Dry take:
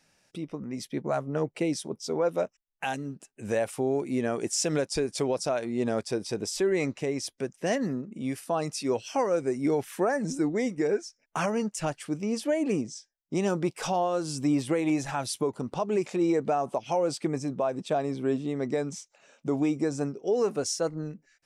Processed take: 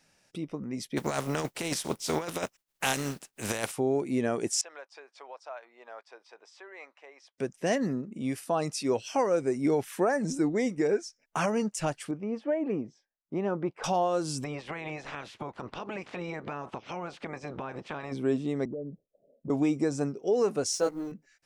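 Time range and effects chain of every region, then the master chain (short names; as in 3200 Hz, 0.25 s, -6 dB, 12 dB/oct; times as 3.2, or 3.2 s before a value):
0.96–3.71 spectral contrast lowered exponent 0.51 + negative-ratio compressor -29 dBFS, ratio -0.5
4.61–7.38 ladder high-pass 710 Hz, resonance 25% + tape spacing loss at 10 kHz 31 dB
12.11–13.84 LPF 1500 Hz + low shelf 360 Hz -6 dB
14.43–18.11 spectral limiter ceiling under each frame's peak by 23 dB + compressor 4:1, threshold -34 dBFS + LPF 2700 Hz
18.65–19.5 block floating point 5-bit + steep low-pass 640 Hz 72 dB/oct + compressor 2.5:1, threshold -37 dBFS
20.72–21.12 G.711 law mismatch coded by A + bell 97 Hz -9 dB 1.2 oct + doubler 16 ms -2.5 dB
whole clip: dry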